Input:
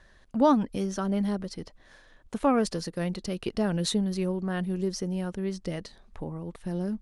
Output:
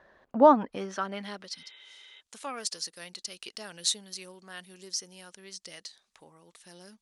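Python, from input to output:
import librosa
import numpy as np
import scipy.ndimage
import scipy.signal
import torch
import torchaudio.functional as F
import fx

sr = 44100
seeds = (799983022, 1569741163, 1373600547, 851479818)

y = fx.filter_sweep_bandpass(x, sr, from_hz=670.0, to_hz=6800.0, start_s=0.36, end_s=1.88, q=0.89)
y = fx.spec_repair(y, sr, seeds[0], start_s=1.59, length_s=0.59, low_hz=300.0, high_hz=3900.0, source='before')
y = y * librosa.db_to_amplitude(6.0)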